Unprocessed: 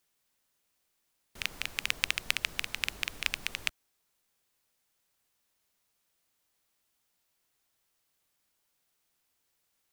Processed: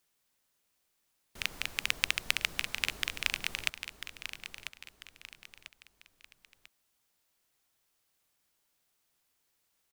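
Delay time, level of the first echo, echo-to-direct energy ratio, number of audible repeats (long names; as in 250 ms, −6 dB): 994 ms, −10.0 dB, −9.5 dB, 3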